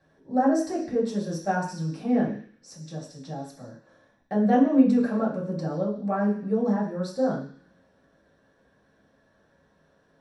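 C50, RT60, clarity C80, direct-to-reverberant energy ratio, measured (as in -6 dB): 7.0 dB, 0.50 s, 10.0 dB, -7.0 dB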